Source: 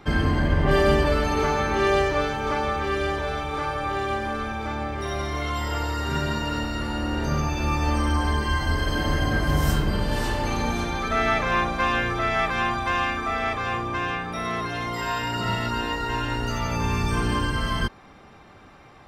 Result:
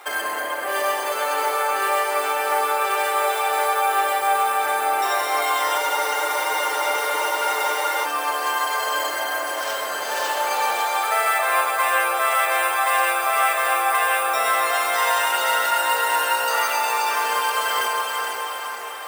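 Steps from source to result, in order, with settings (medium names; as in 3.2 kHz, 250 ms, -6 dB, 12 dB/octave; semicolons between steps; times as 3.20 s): in parallel at +3 dB: compression, threshold -30 dBFS, peak gain reduction 14.5 dB; on the sum: careless resampling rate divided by 4×, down none, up hold; echo that smears into a reverb 458 ms, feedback 55%, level -6 dB; on a send at -3.5 dB: reverberation RT60 0.30 s, pre-delay 125 ms; on the sum: gain riding within 4 dB 0.5 s; high-pass 560 Hz 24 dB/octave; spectral freeze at 5.81 s, 2.23 s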